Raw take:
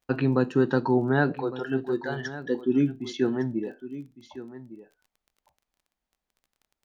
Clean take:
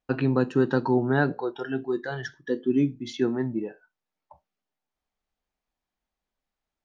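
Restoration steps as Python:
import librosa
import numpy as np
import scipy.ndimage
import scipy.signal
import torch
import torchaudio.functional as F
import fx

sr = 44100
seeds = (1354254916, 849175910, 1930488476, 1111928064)

y = fx.fix_declick_ar(x, sr, threshold=6.5)
y = fx.fix_echo_inverse(y, sr, delay_ms=1158, level_db=-15.0)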